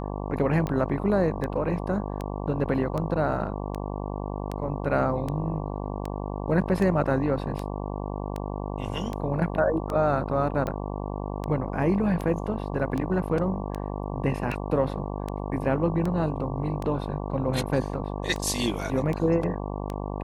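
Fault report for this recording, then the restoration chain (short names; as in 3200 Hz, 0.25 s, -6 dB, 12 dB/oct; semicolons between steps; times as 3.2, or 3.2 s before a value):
buzz 50 Hz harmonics 23 -32 dBFS
tick 78 rpm -18 dBFS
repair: de-click; de-hum 50 Hz, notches 23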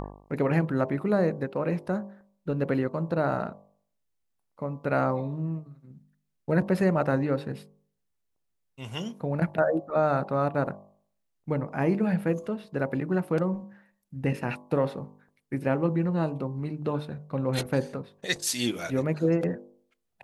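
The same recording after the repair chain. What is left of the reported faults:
none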